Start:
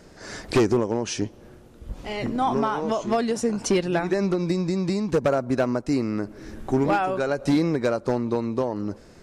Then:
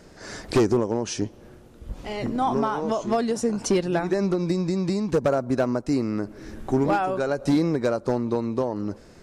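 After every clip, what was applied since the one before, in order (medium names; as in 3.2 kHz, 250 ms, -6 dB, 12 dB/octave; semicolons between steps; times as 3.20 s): dynamic bell 2.4 kHz, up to -4 dB, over -41 dBFS, Q 1.1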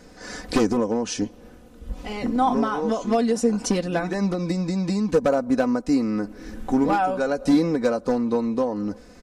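comb 4 ms, depth 67%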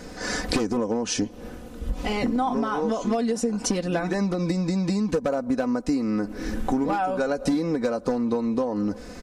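compression 6:1, threshold -30 dBFS, peak gain reduction 15.5 dB; trim +8 dB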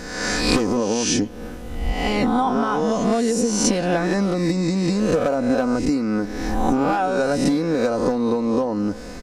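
reverse spectral sustain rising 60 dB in 0.90 s; trim +2.5 dB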